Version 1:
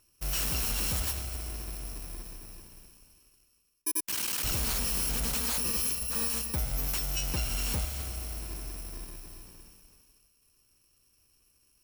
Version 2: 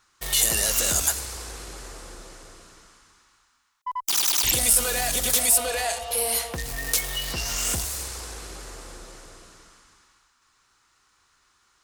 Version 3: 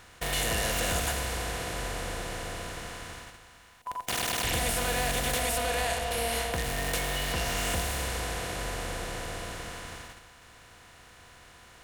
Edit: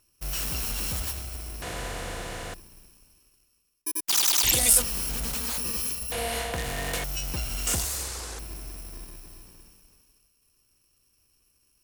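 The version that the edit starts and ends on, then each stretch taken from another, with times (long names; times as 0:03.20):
1
0:01.62–0:02.54: punch in from 3
0:04.09–0:04.82: punch in from 2
0:06.12–0:07.04: punch in from 3
0:07.67–0:08.39: punch in from 2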